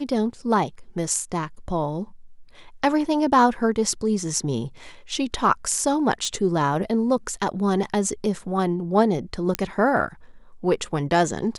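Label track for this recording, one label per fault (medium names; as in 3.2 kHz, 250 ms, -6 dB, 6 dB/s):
6.250000	6.250000	pop
9.550000	9.550000	pop -6 dBFS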